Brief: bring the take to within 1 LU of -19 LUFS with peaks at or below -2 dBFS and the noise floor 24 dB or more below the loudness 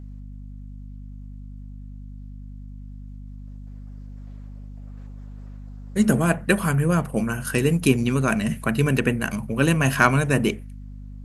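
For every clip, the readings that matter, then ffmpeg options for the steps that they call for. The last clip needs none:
hum 50 Hz; harmonics up to 250 Hz; hum level -36 dBFS; loudness -21.5 LUFS; peak -1.5 dBFS; loudness target -19.0 LUFS
-> -af "bandreject=f=50:t=h:w=4,bandreject=f=100:t=h:w=4,bandreject=f=150:t=h:w=4,bandreject=f=200:t=h:w=4,bandreject=f=250:t=h:w=4"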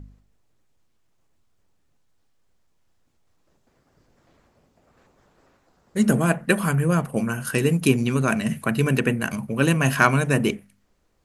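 hum none; loudness -22.0 LUFS; peak -1.0 dBFS; loudness target -19.0 LUFS
-> -af "volume=3dB,alimiter=limit=-2dB:level=0:latency=1"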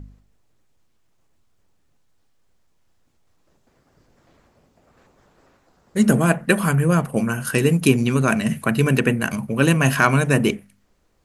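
loudness -19.0 LUFS; peak -2.0 dBFS; noise floor -63 dBFS

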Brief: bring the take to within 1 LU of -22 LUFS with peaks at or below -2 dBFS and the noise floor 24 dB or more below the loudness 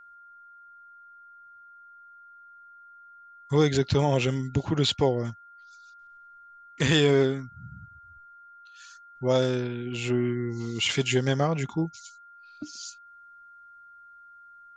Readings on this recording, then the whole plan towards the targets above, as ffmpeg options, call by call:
steady tone 1400 Hz; tone level -48 dBFS; loudness -26.0 LUFS; peak -8.0 dBFS; loudness target -22.0 LUFS
-> -af "bandreject=f=1.4k:w=30"
-af "volume=4dB"

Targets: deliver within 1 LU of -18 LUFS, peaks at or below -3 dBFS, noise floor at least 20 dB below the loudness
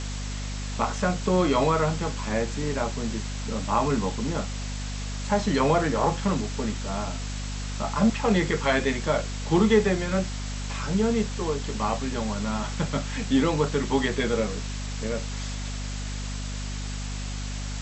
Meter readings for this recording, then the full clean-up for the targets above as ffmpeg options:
hum 50 Hz; harmonics up to 250 Hz; hum level -30 dBFS; noise floor -32 dBFS; noise floor target -47 dBFS; loudness -27.0 LUFS; peak -8.0 dBFS; loudness target -18.0 LUFS
-> -af "bandreject=f=50:t=h:w=4,bandreject=f=100:t=h:w=4,bandreject=f=150:t=h:w=4,bandreject=f=200:t=h:w=4,bandreject=f=250:t=h:w=4"
-af "afftdn=nr=15:nf=-32"
-af "volume=9dB,alimiter=limit=-3dB:level=0:latency=1"

